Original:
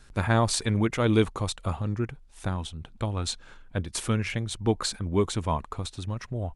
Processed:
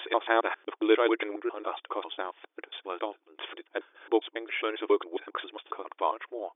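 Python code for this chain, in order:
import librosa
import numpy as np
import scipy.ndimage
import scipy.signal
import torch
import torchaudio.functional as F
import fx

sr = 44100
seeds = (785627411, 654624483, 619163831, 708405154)

y = fx.block_reorder(x, sr, ms=136.0, group=5)
y = fx.brickwall_bandpass(y, sr, low_hz=300.0, high_hz=3600.0)
y = y * librosa.db_to_amplitude(1.5)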